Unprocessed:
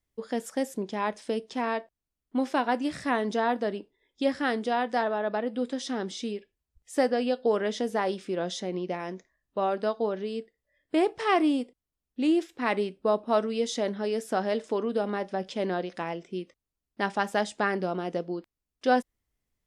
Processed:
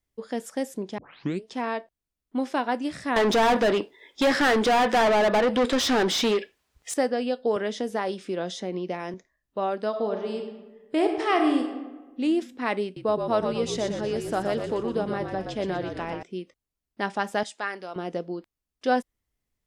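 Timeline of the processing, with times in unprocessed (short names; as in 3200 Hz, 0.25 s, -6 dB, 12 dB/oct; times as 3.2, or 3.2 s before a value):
0.98 tape start 0.46 s
3.16–6.94 overdrive pedal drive 29 dB, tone 3600 Hz, clips at -13.5 dBFS
7.56–9.14 three-band squash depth 40%
9.88–12.21 reverb throw, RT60 1.2 s, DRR 3.5 dB
12.84–16.23 frequency-shifting echo 0.121 s, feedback 46%, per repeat -51 Hz, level -6 dB
17.43–17.96 HPF 1200 Hz 6 dB/oct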